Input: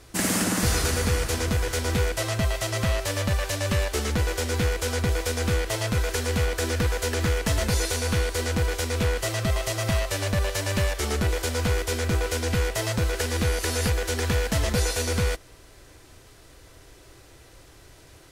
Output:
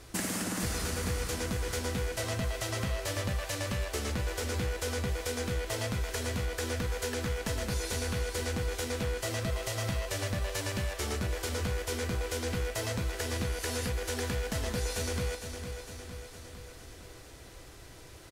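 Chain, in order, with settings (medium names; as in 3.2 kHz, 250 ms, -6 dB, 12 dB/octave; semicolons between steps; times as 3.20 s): compression, threshold -30 dBFS, peak gain reduction 11 dB; on a send: feedback delay 457 ms, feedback 60%, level -8.5 dB; on the sum: trim -1 dB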